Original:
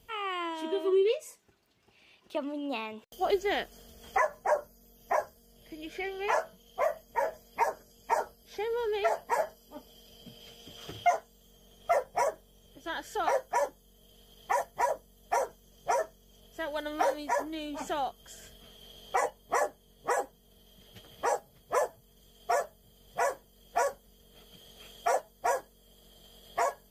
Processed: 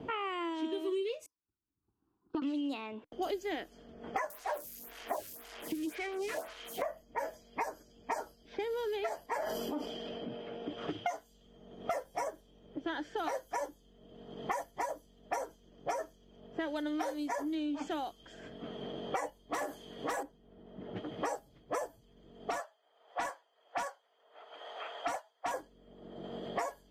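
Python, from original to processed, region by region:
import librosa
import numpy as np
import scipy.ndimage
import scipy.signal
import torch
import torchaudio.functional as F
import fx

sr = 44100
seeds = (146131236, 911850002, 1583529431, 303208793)

y = fx.chain(x, sr, fx.band_shelf(hz=2700.0, db=-15.5, octaves=1.2),
    fx.fixed_phaser(hz=2200.0, stages=6),
    fx.upward_expand(threshold_db=-59.0, expansion=2.5), at=(1.26, 2.42))
y = fx.chain(y, sr, fx.crossing_spikes(level_db=-22.5),
    fx.stagger_phaser(hz=1.9), at=(4.3, 6.82))
y = fx.chain(y, sr, fx.bass_treble(bass_db=-7, treble_db=-8),
    fx.sustainer(db_per_s=24.0), at=(9.26, 10.78))
y = fx.chain(y, sr, fx.tilt_eq(slope=2.5),
    fx.clip_hard(threshold_db=-26.0),
    fx.env_flatten(amount_pct=50), at=(19.53, 20.23))
y = fx.chain(y, sr, fx.highpass(hz=730.0, slope=24),
    fx.overload_stage(gain_db=27.5), at=(22.5, 25.54))
y = fx.env_lowpass(y, sr, base_hz=1000.0, full_db=-28.5)
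y = fx.peak_eq(y, sr, hz=300.0, db=13.0, octaves=0.35)
y = fx.band_squash(y, sr, depth_pct=100)
y = y * librosa.db_to_amplitude(-7.0)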